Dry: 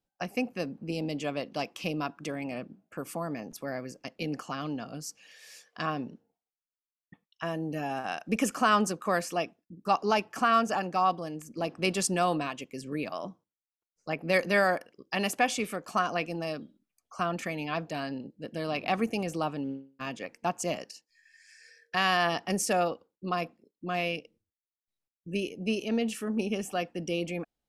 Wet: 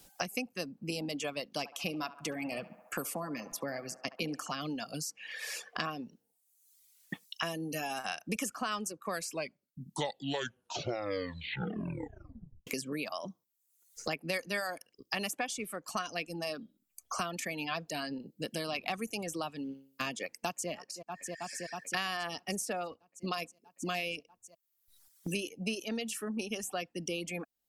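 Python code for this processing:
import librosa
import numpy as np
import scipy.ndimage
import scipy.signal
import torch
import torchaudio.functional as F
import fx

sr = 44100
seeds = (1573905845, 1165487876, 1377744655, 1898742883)

y = fx.echo_banded(x, sr, ms=69, feedback_pct=70, hz=950.0, wet_db=-6.0, at=(1.58, 4.54))
y = fx.echo_throw(y, sr, start_s=20.24, length_s=0.46, ms=320, feedback_pct=85, wet_db=-15.5)
y = fx.edit(y, sr, fx.tape_stop(start_s=9.07, length_s=3.6), tone=tone)
y = fx.dereverb_blind(y, sr, rt60_s=0.86)
y = fx.peak_eq(y, sr, hz=12000.0, db=13.0, octaves=2.5)
y = fx.band_squash(y, sr, depth_pct=100)
y = y * 10.0 ** (-7.0 / 20.0)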